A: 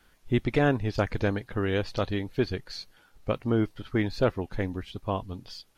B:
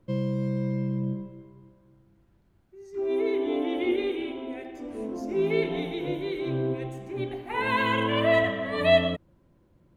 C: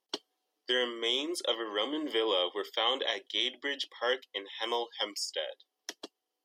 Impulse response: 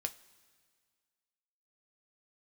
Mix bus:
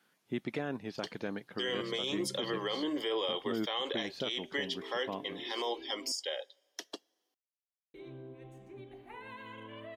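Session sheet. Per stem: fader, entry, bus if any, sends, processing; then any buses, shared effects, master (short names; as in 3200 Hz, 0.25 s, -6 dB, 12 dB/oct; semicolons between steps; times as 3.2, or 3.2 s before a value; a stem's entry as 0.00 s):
-7.5 dB, 0.00 s, no send, Chebyshev high-pass 170 Hz, order 3
-13.5 dB, 1.60 s, muted 6.12–7.94, no send, compressor 5:1, threshold -32 dBFS, peak gain reduction 15.5 dB
-0.5 dB, 0.90 s, send -13.5 dB, dry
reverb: on, pre-delay 3 ms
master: limiter -24.5 dBFS, peak gain reduction 11 dB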